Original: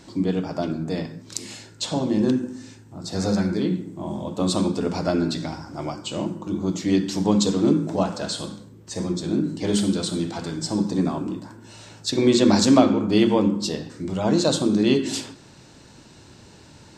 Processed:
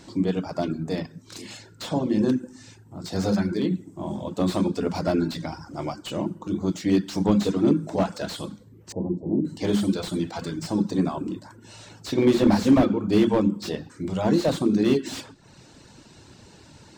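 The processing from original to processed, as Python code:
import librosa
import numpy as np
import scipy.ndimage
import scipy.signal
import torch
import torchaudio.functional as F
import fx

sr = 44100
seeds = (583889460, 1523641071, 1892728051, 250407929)

y = fx.dereverb_blind(x, sr, rt60_s=0.58)
y = fx.ellip_lowpass(y, sr, hz=900.0, order=4, stop_db=40, at=(8.92, 9.45))
y = fx.slew_limit(y, sr, full_power_hz=90.0)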